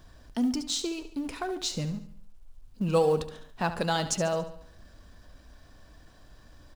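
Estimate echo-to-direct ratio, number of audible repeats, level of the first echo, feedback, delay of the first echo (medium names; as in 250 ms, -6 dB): -11.0 dB, 4, -12.0 dB, 47%, 71 ms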